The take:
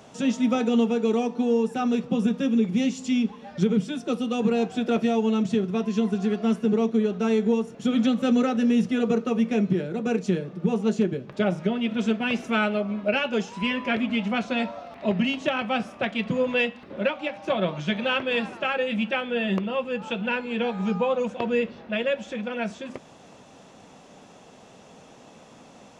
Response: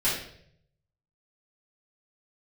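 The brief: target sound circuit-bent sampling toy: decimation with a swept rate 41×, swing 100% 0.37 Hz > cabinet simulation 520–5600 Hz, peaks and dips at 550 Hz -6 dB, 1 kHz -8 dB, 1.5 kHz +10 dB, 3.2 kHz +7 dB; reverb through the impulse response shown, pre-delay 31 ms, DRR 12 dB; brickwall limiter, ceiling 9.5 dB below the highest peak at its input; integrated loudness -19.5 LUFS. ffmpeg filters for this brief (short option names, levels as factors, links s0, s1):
-filter_complex "[0:a]alimiter=limit=0.0841:level=0:latency=1,asplit=2[s0][s1];[1:a]atrim=start_sample=2205,adelay=31[s2];[s1][s2]afir=irnorm=-1:irlink=0,volume=0.0668[s3];[s0][s3]amix=inputs=2:normalize=0,acrusher=samples=41:mix=1:aa=0.000001:lfo=1:lforange=41:lforate=0.37,highpass=520,equalizer=f=550:t=q:w=4:g=-6,equalizer=f=1000:t=q:w=4:g=-8,equalizer=f=1500:t=q:w=4:g=10,equalizer=f=3200:t=q:w=4:g=7,lowpass=f=5600:w=0.5412,lowpass=f=5600:w=1.3066,volume=5.01"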